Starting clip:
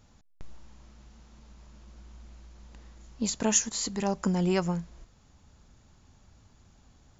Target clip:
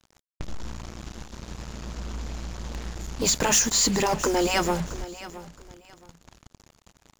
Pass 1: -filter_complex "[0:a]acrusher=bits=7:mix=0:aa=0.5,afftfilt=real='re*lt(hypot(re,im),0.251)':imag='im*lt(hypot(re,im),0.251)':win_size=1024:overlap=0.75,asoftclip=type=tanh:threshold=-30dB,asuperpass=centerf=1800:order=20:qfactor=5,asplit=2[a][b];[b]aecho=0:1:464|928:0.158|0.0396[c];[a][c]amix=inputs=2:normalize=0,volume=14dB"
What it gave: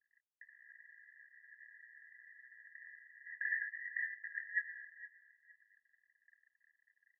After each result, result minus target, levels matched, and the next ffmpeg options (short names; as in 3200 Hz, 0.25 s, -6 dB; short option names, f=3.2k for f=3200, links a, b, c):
2000 Hz band +11.5 dB; echo 0.205 s early
-filter_complex "[0:a]acrusher=bits=7:mix=0:aa=0.5,afftfilt=real='re*lt(hypot(re,im),0.251)':imag='im*lt(hypot(re,im),0.251)':win_size=1024:overlap=0.75,asoftclip=type=tanh:threshold=-30dB,asplit=2[a][b];[b]aecho=0:1:464|928:0.158|0.0396[c];[a][c]amix=inputs=2:normalize=0,volume=14dB"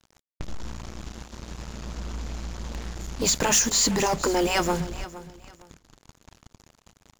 echo 0.205 s early
-filter_complex "[0:a]acrusher=bits=7:mix=0:aa=0.5,afftfilt=real='re*lt(hypot(re,im),0.251)':imag='im*lt(hypot(re,im),0.251)':win_size=1024:overlap=0.75,asoftclip=type=tanh:threshold=-30dB,asplit=2[a][b];[b]aecho=0:1:669|1338:0.158|0.0396[c];[a][c]amix=inputs=2:normalize=0,volume=14dB"